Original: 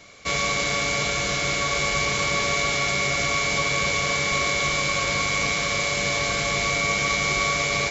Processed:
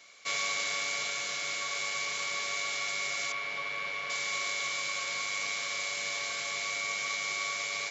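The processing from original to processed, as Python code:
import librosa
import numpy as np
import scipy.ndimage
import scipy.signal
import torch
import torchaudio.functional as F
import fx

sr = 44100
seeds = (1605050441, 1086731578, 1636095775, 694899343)

y = fx.lowpass(x, sr, hz=2800.0, slope=12, at=(3.32, 4.1))
y = fx.rider(y, sr, range_db=10, speed_s=2.0)
y = fx.highpass(y, sr, hz=1400.0, slope=6)
y = F.gain(torch.from_numpy(y), -8.0).numpy()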